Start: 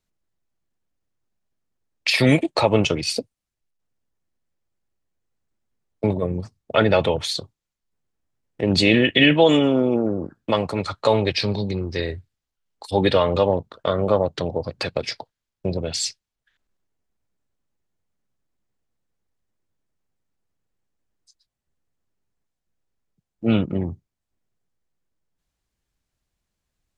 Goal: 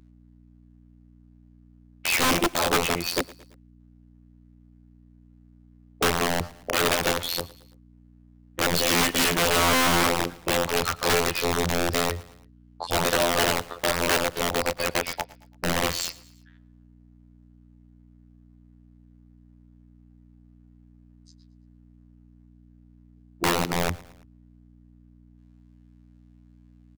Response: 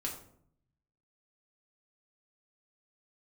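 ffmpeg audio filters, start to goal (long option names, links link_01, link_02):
-filter_complex "[0:a]afftfilt=real='hypot(re,im)*cos(PI*b)':imag='0':win_size=2048:overlap=0.75,aeval=exprs='val(0)+0.00158*(sin(2*PI*60*n/s)+sin(2*PI*2*60*n/s)/2+sin(2*PI*3*60*n/s)/3+sin(2*PI*4*60*n/s)/4+sin(2*PI*5*60*n/s)/5)':channel_layout=same,asplit=2[link_01][link_02];[link_02]highpass=frequency=720:poles=1,volume=12dB,asoftclip=type=tanh:threshold=-1dB[link_03];[link_01][link_03]amix=inputs=2:normalize=0,lowpass=frequency=1100:poles=1,volume=-6dB,alimiter=limit=-15dB:level=0:latency=1:release=412,aeval=exprs='(mod(15.8*val(0)+1,2)-1)/15.8':channel_layout=same,asplit=2[link_04][link_05];[link_05]aecho=0:1:112|224|336:0.0891|0.0428|0.0205[link_06];[link_04][link_06]amix=inputs=2:normalize=0,volume=8.5dB"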